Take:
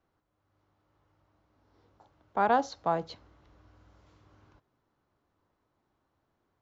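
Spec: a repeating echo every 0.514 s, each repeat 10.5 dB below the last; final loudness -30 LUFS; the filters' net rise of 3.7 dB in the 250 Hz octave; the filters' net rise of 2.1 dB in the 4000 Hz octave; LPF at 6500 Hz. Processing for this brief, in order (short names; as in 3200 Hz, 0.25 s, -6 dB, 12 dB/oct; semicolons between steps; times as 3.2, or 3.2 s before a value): LPF 6500 Hz; bell 250 Hz +4.5 dB; bell 4000 Hz +3 dB; feedback echo 0.514 s, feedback 30%, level -10.5 dB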